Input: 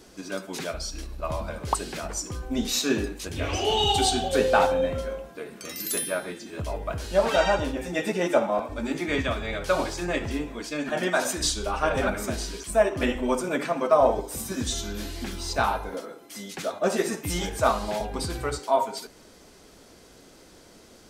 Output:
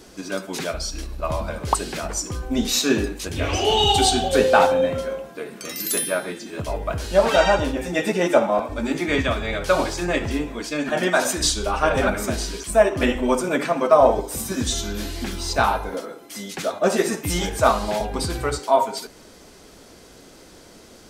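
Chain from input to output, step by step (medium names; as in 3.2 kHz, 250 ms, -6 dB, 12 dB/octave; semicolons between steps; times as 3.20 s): 4.44–6.69 s: high-pass 100 Hz 12 dB/octave; trim +5 dB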